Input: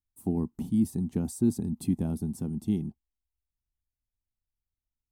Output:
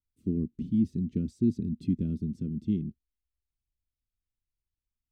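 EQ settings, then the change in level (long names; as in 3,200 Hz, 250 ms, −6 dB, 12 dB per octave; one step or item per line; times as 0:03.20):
Butterworth band-reject 860 Hz, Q 0.6
high-frequency loss of the air 200 metres
parametric band 1,700 Hz −8 dB 0.44 octaves
0.0 dB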